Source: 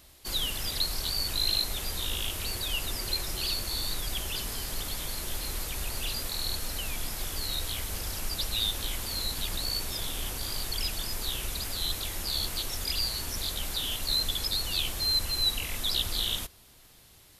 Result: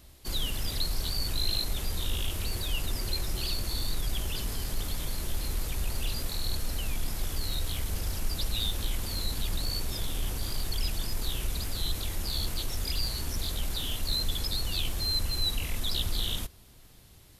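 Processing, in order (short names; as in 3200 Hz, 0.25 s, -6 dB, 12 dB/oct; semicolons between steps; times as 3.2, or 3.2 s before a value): low shelf 360 Hz +9 dB; in parallel at -10 dB: hard clip -27.5 dBFS, distortion -8 dB; on the sum: gain -5 dB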